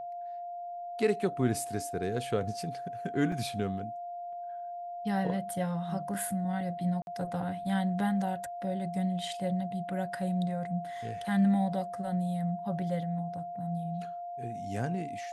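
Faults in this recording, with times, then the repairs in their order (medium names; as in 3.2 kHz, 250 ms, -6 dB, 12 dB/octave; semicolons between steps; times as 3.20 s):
whine 700 Hz -37 dBFS
3.32 s: dropout 2.8 ms
7.02–7.07 s: dropout 51 ms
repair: band-stop 700 Hz, Q 30; interpolate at 3.32 s, 2.8 ms; interpolate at 7.02 s, 51 ms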